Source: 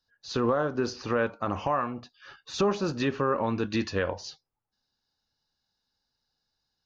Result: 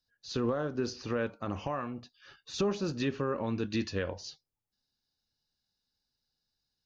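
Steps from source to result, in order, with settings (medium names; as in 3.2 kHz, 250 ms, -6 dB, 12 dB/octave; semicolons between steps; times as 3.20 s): peaking EQ 1 kHz -7.5 dB 1.8 oct; trim -2.5 dB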